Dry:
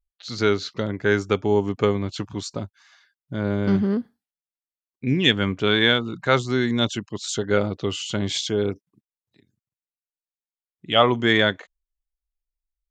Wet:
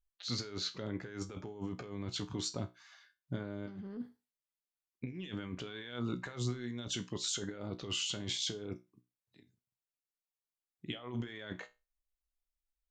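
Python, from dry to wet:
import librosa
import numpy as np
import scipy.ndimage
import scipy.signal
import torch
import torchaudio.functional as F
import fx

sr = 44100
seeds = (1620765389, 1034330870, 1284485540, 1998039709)

y = fx.over_compress(x, sr, threshold_db=-30.0, ratio=-1.0)
y = fx.comb_fb(y, sr, f0_hz=61.0, decay_s=0.25, harmonics='all', damping=0.0, mix_pct=70)
y = y * 10.0 ** (-6.5 / 20.0)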